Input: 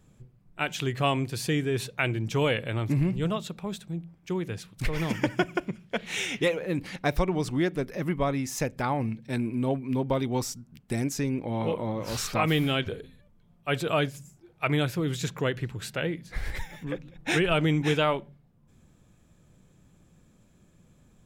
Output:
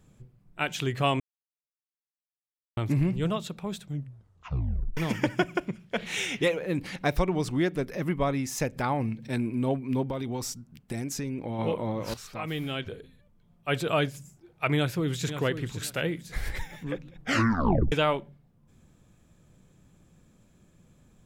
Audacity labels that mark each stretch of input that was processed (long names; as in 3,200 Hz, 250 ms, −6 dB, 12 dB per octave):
1.200000	2.770000	silence
3.810000	3.810000	tape stop 1.16 s
5.980000	9.280000	upward compression, threshold −33 dBFS
10.090000	11.590000	downward compressor, threshold −28 dBFS
12.140000	13.740000	fade in, from −15 dB
14.750000	15.310000	delay throw 530 ms, feedback 25%, level −10.5 dB
15.830000	16.490000	high-shelf EQ 6,800 Hz +9.5 dB
17.200000	17.200000	tape stop 0.72 s